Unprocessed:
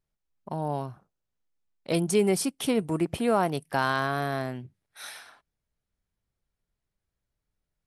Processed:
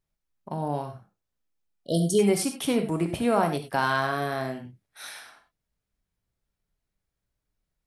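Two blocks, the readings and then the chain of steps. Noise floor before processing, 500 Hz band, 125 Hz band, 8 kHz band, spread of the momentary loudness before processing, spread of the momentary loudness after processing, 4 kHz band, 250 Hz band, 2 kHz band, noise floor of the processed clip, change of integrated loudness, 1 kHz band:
−85 dBFS, +1.0 dB, +1.5 dB, +1.0 dB, 18 LU, 18 LU, +1.0 dB, +1.5 dB, +1.5 dB, −84 dBFS, +1.5 dB, +1.5 dB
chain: reverb whose tail is shaped and stops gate 120 ms flat, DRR 5.5 dB
healed spectral selection 0:01.70–0:02.17, 720–2,900 Hz before

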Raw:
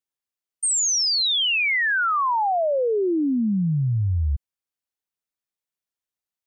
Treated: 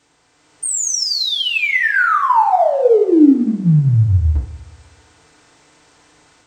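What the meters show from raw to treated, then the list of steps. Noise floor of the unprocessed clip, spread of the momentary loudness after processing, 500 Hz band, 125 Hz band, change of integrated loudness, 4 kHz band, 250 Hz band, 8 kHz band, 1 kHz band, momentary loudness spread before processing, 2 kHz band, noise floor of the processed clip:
below −85 dBFS, 8 LU, +8.5 dB, +9.0 dB, +6.5 dB, +2.0 dB, +10.0 dB, +2.0 dB, +8.0 dB, 6 LU, +6.0 dB, −58 dBFS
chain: compressor on every frequency bin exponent 0.6
automatic gain control gain up to 7.5 dB
low-shelf EQ 430 Hz +3.5 dB
on a send: echo machine with several playback heads 63 ms, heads first and third, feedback 49%, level −19 dB
on the sum: feedback delay network reverb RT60 0.52 s, low-frequency decay 0.7×, high-frequency decay 0.3×, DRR −5 dB
in parallel at −10 dB: soft clipping −22 dBFS, distortion −3 dB
on the sum: level −9 dB

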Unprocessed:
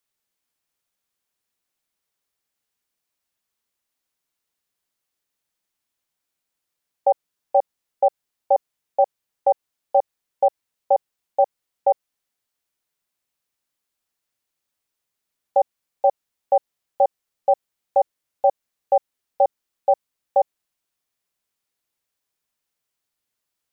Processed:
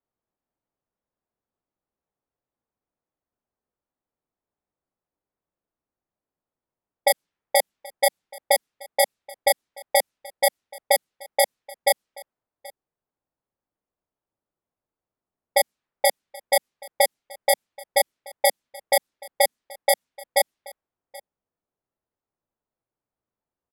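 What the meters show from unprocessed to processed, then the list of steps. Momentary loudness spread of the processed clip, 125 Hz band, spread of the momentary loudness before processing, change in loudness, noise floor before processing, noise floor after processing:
4 LU, can't be measured, 4 LU, −0.5 dB, −82 dBFS, below −85 dBFS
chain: samples in bit-reversed order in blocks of 32 samples
low-pass that shuts in the quiet parts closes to 850 Hz, open at −16.5 dBFS
dynamic equaliser 220 Hz, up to +8 dB, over −42 dBFS, Q 1.1
brickwall limiter −10.5 dBFS, peak gain reduction 5 dB
on a send: single-tap delay 779 ms −22 dB
on the sum: level +3 dB

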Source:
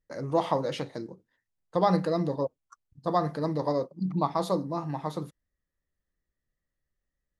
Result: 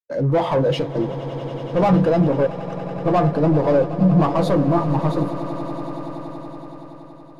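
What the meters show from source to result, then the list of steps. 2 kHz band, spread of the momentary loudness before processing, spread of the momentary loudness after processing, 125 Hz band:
+11.0 dB, 11 LU, 16 LU, +14.0 dB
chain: leveller curve on the samples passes 5
echo that builds up and dies away 94 ms, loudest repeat 8, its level −14 dB
every bin expanded away from the loudest bin 1.5 to 1
level −2 dB

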